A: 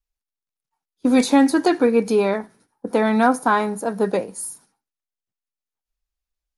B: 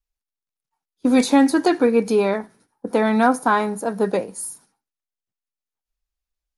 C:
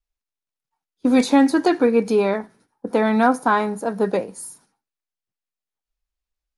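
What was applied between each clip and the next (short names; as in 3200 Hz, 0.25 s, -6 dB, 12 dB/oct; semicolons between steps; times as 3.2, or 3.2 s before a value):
nothing audible
high shelf 9200 Hz -9 dB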